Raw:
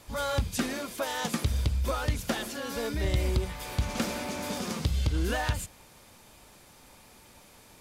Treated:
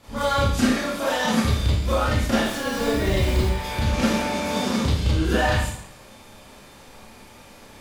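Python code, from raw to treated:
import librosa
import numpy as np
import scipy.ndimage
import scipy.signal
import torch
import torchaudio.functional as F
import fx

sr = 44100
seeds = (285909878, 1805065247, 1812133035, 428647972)

y = fx.high_shelf(x, sr, hz=6400.0, db=-10.0)
y = fx.dmg_noise_colour(y, sr, seeds[0], colour='pink', level_db=-48.0, at=(2.41, 3.44), fade=0.02)
y = fx.rev_schroeder(y, sr, rt60_s=0.63, comb_ms=28, drr_db=-9.5)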